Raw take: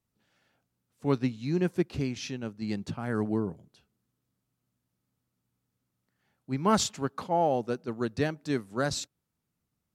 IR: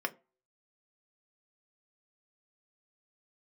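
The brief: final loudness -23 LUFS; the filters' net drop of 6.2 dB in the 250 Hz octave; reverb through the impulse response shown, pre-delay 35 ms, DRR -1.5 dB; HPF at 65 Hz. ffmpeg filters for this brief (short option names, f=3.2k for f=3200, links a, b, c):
-filter_complex "[0:a]highpass=65,equalizer=f=250:t=o:g=-8.5,asplit=2[a][b];[1:a]atrim=start_sample=2205,adelay=35[c];[b][c]afir=irnorm=-1:irlink=0,volume=-4dB[d];[a][d]amix=inputs=2:normalize=0,volume=7dB"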